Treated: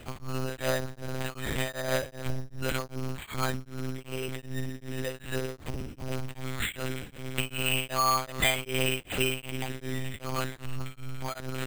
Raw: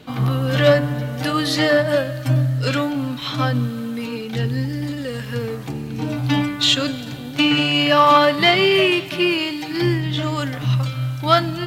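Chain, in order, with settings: bass shelf 73 Hz +11 dB; compression 3:1, threshold -23 dBFS, peak gain reduction 11.5 dB; bass shelf 410 Hz -7 dB; monotone LPC vocoder at 8 kHz 130 Hz; careless resampling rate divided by 8×, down none, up hold; tremolo of two beating tones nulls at 2.6 Hz

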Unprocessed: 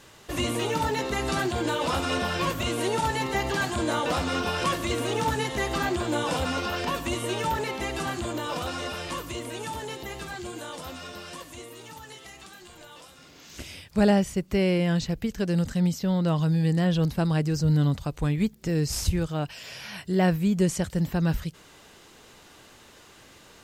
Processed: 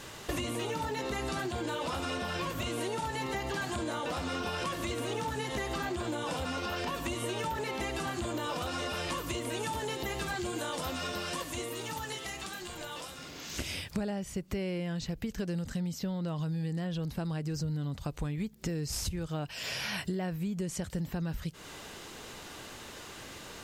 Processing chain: in parallel at -0.5 dB: peak limiter -21.5 dBFS, peak gain reduction 10.5 dB; on the sum: compression 16:1, threshold -31 dBFS, peak gain reduction 18 dB

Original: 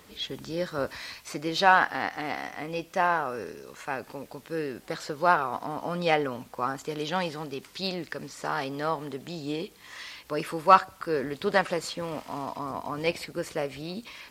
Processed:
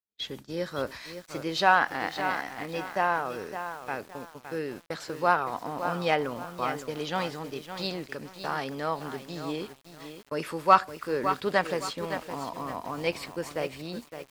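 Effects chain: gate -39 dBFS, range -50 dB; bit-crushed delay 563 ms, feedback 35%, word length 7-bit, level -9 dB; trim -1.5 dB

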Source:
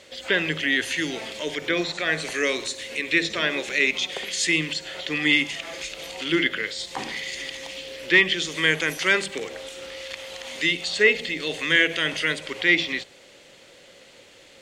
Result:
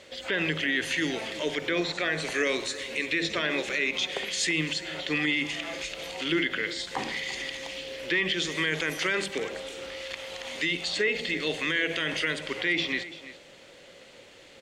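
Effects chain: treble shelf 4.3 kHz -5.5 dB; peak limiter -17 dBFS, peak gain reduction 10 dB; on a send: delay 338 ms -15.5 dB

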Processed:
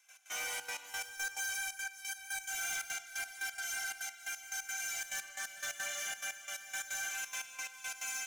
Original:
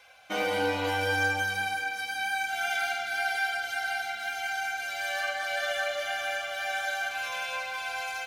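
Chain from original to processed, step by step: Bessel high-pass 1.9 kHz, order 2; resonant high shelf 5.3 kHz +7 dB, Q 3; saturation -33.5 dBFS, distortion -12 dB; trance gate ".x.xxxx.x..x." 176 bpm -12 dB

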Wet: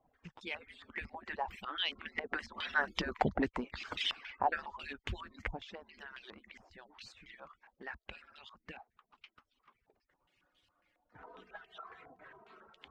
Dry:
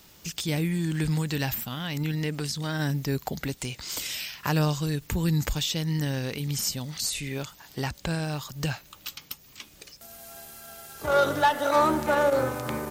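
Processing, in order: harmonic-percussive separation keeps percussive; Doppler pass-by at 3.08 s, 8 m/s, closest 4.5 m; step-sequenced low-pass 7.3 Hz 780–3200 Hz; trim +2 dB

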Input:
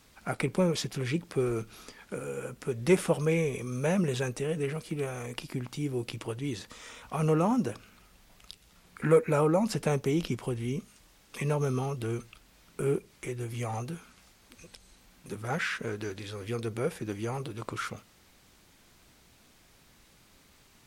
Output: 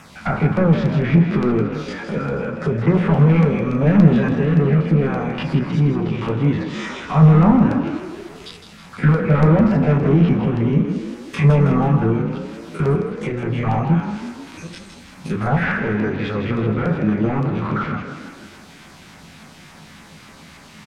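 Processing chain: spectrogram pixelated in time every 50 ms; overdrive pedal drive 27 dB, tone 1.8 kHz, clips at -13.5 dBFS; low-pass that closes with the level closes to 1.9 kHz, closed at -24 dBFS; resonant low shelf 260 Hz +8.5 dB, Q 1.5; hum notches 60/120/180/240/300/360/420/480 Hz; LFO notch saw down 3.5 Hz 370–4600 Hz; frequency-shifting echo 161 ms, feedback 53%, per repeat +36 Hz, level -8.5 dB; reverberation RT60 0.40 s, pre-delay 3 ms, DRR 7.5 dB; trim +3.5 dB

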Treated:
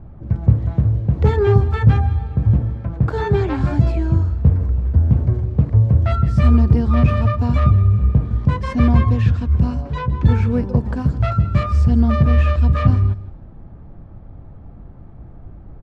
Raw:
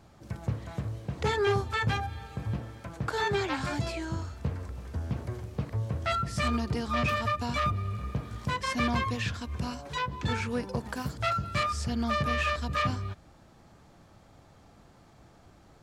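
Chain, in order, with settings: level-controlled noise filter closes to 2.2 kHz, open at -28 dBFS; tilt EQ -4.5 dB/octave; delay 161 ms -15.5 dB; trim +4 dB

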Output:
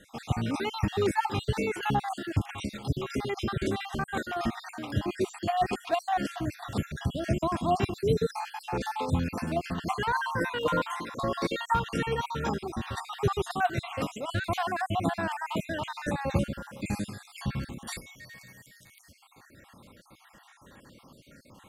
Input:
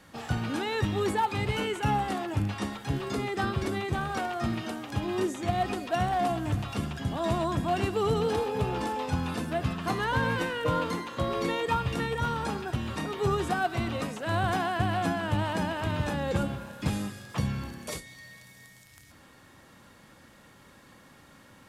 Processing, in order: random holes in the spectrogram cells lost 52%; trim +2.5 dB

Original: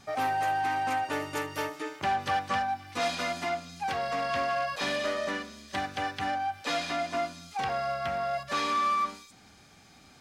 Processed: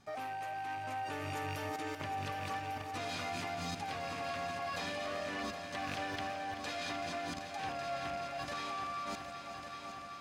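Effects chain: rattle on loud lows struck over -43 dBFS, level -30 dBFS; 0.76–2.30 s: peaking EQ 100 Hz +8.5 dB 0.76 oct; level held to a coarse grid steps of 23 dB; multi-head delay 383 ms, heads all three, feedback 65%, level -12 dB; tape noise reduction on one side only decoder only; trim +5.5 dB

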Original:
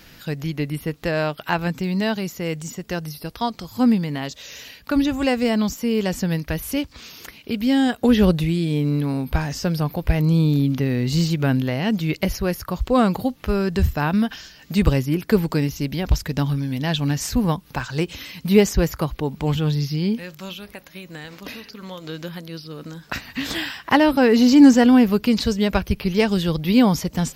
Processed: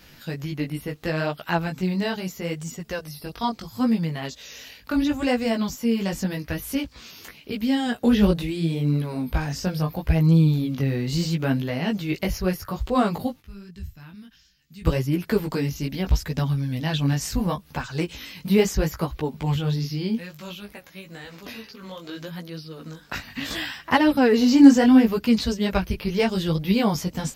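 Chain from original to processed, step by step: 13.40–14.85 s: amplifier tone stack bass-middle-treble 6-0-2; chorus voices 2, 0.73 Hz, delay 17 ms, depth 5 ms

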